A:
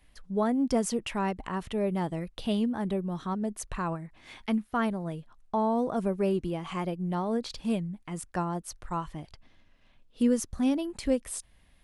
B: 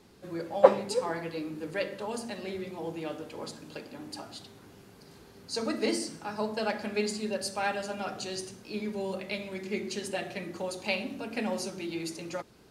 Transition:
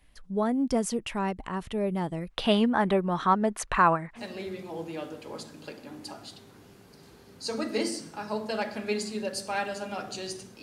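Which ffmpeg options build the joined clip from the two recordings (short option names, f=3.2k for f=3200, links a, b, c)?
-filter_complex "[0:a]asplit=3[a][b][c];[a]afade=t=out:st=2.29:d=0.02[d];[b]equalizer=f=1.4k:w=0.34:g=14.5,afade=t=in:st=2.29:d=0.02,afade=t=out:st=4.21:d=0.02[e];[c]afade=t=in:st=4.21:d=0.02[f];[d][e][f]amix=inputs=3:normalize=0,apad=whole_dur=10.62,atrim=end=10.62,atrim=end=4.21,asetpts=PTS-STARTPTS[g];[1:a]atrim=start=2.23:end=8.7,asetpts=PTS-STARTPTS[h];[g][h]acrossfade=d=0.06:c1=tri:c2=tri"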